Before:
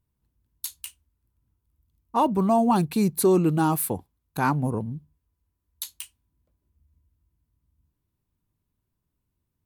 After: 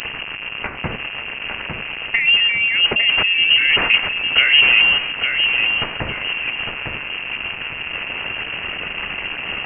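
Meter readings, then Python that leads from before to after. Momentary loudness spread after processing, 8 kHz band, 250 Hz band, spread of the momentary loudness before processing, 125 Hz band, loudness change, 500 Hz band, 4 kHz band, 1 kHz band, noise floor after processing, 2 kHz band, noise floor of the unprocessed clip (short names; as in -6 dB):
14 LU, under -25 dB, -10.5 dB, 19 LU, -6.0 dB, +7.0 dB, -5.5 dB, +30.5 dB, -2.5 dB, -30 dBFS, +26.5 dB, -80 dBFS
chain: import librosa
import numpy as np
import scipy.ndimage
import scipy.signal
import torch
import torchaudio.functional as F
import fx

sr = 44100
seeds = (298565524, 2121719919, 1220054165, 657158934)

p1 = fx.delta_mod(x, sr, bps=64000, step_db=-36.5)
p2 = scipy.signal.sosfilt(scipy.signal.butter(4, 170.0, 'highpass', fs=sr, output='sos'), p1)
p3 = fx.over_compress(p2, sr, threshold_db=-30.0, ratio=-1.0)
p4 = fx.leveller(p3, sr, passes=2)
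p5 = p4 + fx.echo_feedback(p4, sr, ms=854, feedback_pct=34, wet_db=-5.5, dry=0)
p6 = fx.freq_invert(p5, sr, carrier_hz=3000)
y = p6 * librosa.db_to_amplitude(8.5)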